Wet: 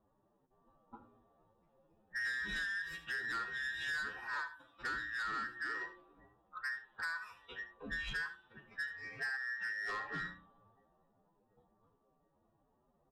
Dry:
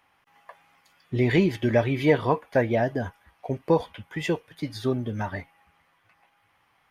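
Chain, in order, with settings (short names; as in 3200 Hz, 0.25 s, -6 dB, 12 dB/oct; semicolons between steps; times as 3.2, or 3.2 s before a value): band inversion scrambler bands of 2000 Hz; low-pass opened by the level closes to 530 Hz, open at -20 dBFS; notches 60/120/180/240/300/360 Hz; compressor 10:1, threshold -31 dBFS, peak gain reduction 17.5 dB; time stretch by phase-locked vocoder 1.9×; soft clip -33 dBFS, distortion -11 dB; echo 75 ms -13.5 dB; gain -1.5 dB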